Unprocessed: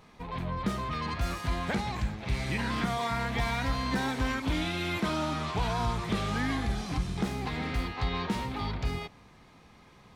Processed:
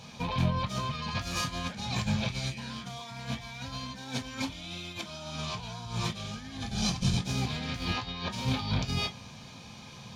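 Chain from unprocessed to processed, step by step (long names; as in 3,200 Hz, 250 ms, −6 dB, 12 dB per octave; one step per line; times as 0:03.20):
0:06.21–0:07.35: sub-octave generator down 2 octaves, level −2 dB
high-pass filter 85 Hz 6 dB per octave
parametric band 4,600 Hz +8 dB 2.8 octaves
compressor whose output falls as the input rises −35 dBFS, ratio −0.5
convolution reverb, pre-delay 3 ms, DRR 4.5 dB
level −1.5 dB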